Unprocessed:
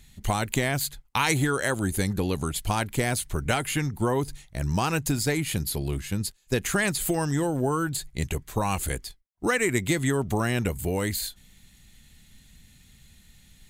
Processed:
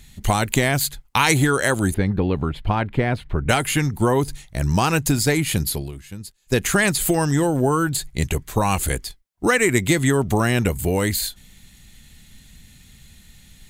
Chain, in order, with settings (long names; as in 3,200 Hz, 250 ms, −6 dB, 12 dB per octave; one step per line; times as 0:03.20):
0:01.94–0:03.49: high-frequency loss of the air 410 metres
0:05.67–0:06.57: duck −13 dB, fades 0.25 s
level +6.5 dB